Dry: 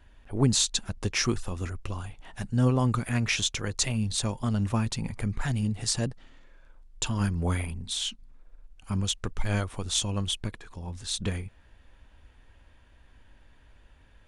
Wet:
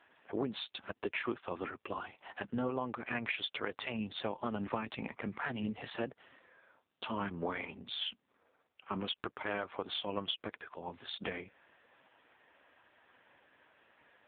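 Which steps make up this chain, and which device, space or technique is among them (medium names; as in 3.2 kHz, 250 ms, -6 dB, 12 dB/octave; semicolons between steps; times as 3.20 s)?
voicemail (band-pass 390–3100 Hz; compression 12:1, threshold -35 dBFS, peak gain reduction 11 dB; trim +5 dB; AMR-NB 5.9 kbps 8 kHz)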